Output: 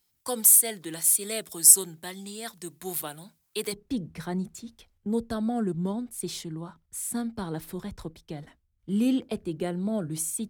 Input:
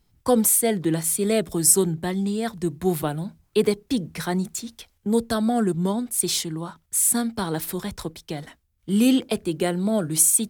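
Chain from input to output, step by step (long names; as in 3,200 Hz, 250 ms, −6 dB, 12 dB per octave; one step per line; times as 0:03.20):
spectral tilt +3.5 dB per octave, from 0:03.72 −1.5 dB per octave
level −9 dB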